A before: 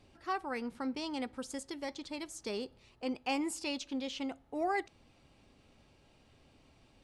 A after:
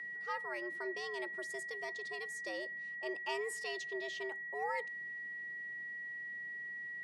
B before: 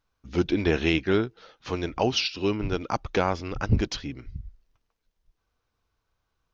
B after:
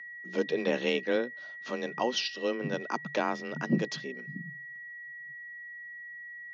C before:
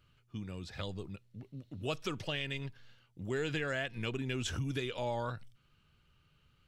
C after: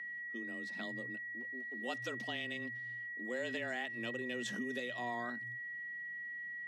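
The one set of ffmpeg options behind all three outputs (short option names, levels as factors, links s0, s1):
-af "aeval=exprs='val(0)+0.0158*sin(2*PI*1800*n/s)':c=same,afreqshift=120,volume=0.531"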